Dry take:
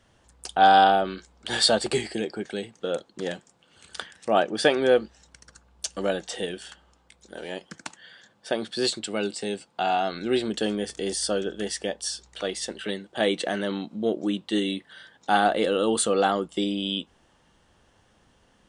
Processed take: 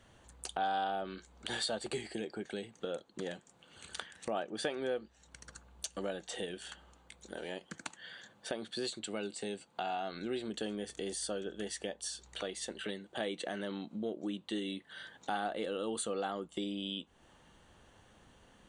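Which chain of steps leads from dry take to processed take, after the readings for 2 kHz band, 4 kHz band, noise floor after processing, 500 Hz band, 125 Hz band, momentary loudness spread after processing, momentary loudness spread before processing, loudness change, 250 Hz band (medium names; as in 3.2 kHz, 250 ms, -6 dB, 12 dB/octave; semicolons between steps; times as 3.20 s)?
-13.0 dB, -12.5 dB, -66 dBFS, -13.5 dB, -11.5 dB, 12 LU, 17 LU, -14.0 dB, -12.0 dB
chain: band-stop 5.2 kHz, Q 5.7; compression 2.5:1, threshold -41 dBFS, peak gain reduction 18 dB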